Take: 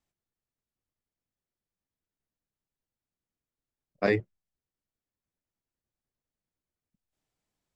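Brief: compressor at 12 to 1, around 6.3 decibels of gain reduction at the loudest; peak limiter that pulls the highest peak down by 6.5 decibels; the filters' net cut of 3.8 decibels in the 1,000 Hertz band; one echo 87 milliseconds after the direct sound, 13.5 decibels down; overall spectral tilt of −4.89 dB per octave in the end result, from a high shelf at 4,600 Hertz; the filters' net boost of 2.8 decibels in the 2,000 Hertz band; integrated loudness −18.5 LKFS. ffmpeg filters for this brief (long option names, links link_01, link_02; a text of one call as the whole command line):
ffmpeg -i in.wav -af "equalizer=frequency=1000:width_type=o:gain=-8,equalizer=frequency=2000:width_type=o:gain=4,highshelf=frequency=4600:gain=8,acompressor=threshold=-25dB:ratio=12,alimiter=limit=-22.5dB:level=0:latency=1,aecho=1:1:87:0.211,volume=20dB" out.wav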